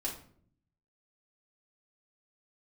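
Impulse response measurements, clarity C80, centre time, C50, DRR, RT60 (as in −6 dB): 12.5 dB, 24 ms, 7.5 dB, −5.0 dB, 0.55 s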